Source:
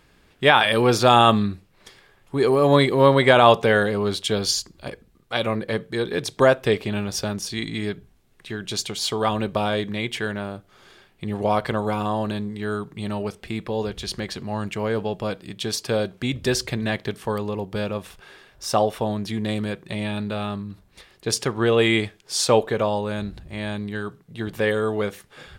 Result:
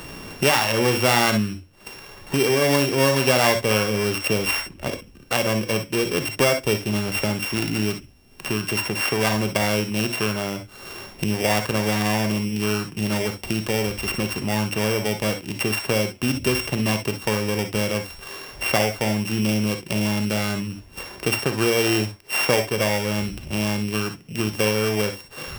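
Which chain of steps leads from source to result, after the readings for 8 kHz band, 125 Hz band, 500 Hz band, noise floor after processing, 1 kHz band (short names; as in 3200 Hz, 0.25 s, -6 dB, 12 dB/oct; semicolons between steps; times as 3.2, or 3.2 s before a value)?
+4.0 dB, +1.5 dB, -2.0 dB, -46 dBFS, -4.0 dB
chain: sample sorter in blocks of 16 samples; non-linear reverb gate 80 ms rising, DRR 6.5 dB; three-band squash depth 70%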